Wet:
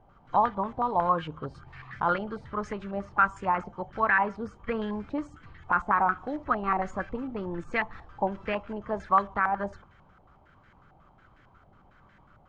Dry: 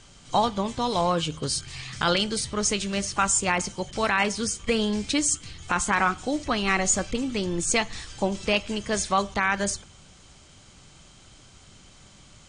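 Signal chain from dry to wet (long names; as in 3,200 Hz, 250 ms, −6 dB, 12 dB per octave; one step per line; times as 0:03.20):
low-pass on a step sequencer 11 Hz 780–1,700 Hz
level −7 dB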